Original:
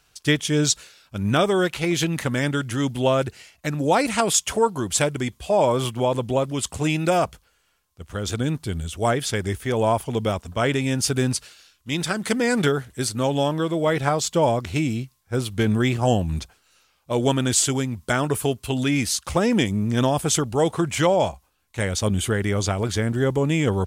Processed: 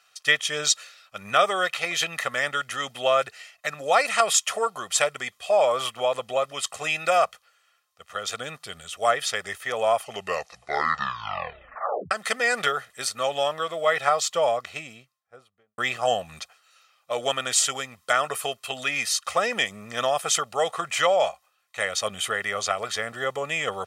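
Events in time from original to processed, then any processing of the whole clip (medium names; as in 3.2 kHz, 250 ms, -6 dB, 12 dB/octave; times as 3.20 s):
9.96 s: tape stop 2.15 s
14.23–15.78 s: studio fade out
whole clip: high-pass 1.2 kHz 12 dB/octave; tilt EQ -3 dB/octave; comb 1.6 ms, depth 67%; trim +5.5 dB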